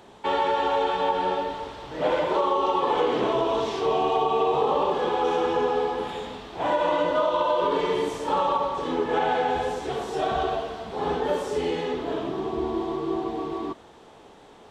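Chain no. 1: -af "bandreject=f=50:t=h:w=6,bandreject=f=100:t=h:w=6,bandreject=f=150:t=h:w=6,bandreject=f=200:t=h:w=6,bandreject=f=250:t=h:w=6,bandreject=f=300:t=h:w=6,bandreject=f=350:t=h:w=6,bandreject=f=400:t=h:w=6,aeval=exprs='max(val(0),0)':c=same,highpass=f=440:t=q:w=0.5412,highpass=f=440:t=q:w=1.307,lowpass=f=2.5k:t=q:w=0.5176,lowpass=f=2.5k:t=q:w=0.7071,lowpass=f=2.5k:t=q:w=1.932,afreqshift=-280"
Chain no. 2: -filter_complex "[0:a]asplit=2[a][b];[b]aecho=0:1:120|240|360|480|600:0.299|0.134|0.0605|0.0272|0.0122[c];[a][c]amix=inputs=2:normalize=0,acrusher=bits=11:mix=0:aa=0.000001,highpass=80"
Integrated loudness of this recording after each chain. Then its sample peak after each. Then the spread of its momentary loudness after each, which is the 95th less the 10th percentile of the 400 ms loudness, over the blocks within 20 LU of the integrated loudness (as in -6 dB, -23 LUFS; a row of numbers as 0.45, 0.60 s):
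-32.0, -25.0 LUFS; -16.5, -10.5 dBFS; 9, 8 LU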